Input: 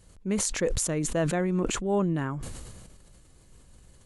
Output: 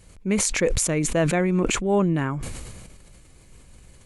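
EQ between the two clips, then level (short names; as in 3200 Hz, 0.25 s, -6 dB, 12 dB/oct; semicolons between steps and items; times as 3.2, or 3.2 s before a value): bell 2300 Hz +8 dB 0.31 oct; +5.0 dB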